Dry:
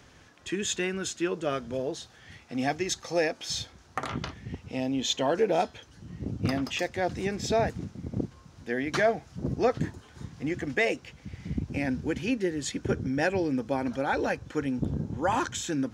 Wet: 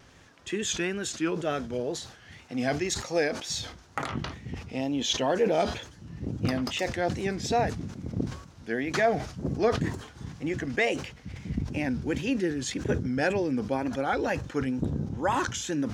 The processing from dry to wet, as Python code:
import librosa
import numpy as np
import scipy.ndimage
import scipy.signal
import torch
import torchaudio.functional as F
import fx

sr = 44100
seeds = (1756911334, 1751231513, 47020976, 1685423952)

y = fx.wow_flutter(x, sr, seeds[0], rate_hz=2.1, depth_cents=100.0)
y = fx.sustainer(y, sr, db_per_s=89.0)